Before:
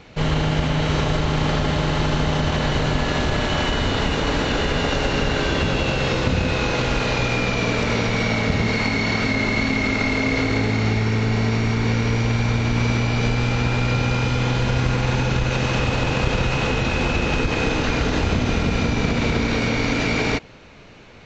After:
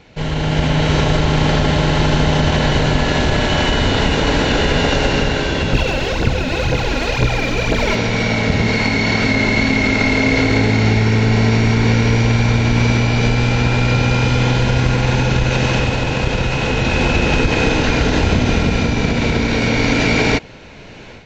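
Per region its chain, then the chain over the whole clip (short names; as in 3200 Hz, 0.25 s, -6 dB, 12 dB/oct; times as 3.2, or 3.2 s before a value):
5.73–7.95 echo with dull and thin repeats by turns 0.132 s, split 890 Hz, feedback 60%, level -4 dB + phaser 2 Hz, delay 3.8 ms, feedback 63%
whole clip: notch 1200 Hz, Q 7.1; AGC; gain -1 dB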